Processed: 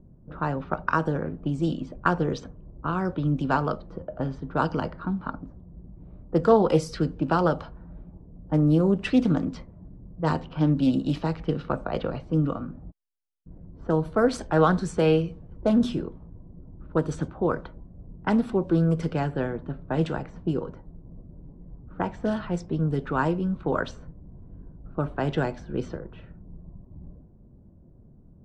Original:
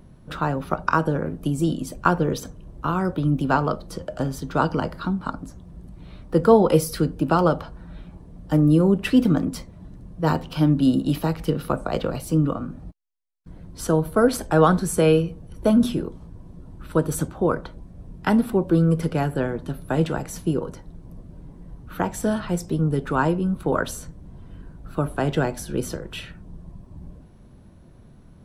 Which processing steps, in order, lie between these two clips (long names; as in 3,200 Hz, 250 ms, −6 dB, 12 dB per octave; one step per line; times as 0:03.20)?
low-pass filter 7,900 Hz 24 dB per octave
low-pass that shuts in the quiet parts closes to 470 Hz, open at −16.5 dBFS
highs frequency-modulated by the lows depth 0.17 ms
level −3.5 dB